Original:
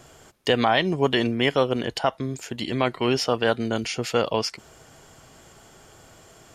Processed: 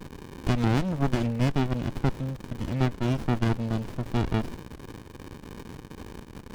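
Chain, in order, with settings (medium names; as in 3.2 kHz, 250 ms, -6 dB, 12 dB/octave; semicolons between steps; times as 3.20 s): crackle 420 per s -32 dBFS; sliding maximum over 65 samples; trim -3.5 dB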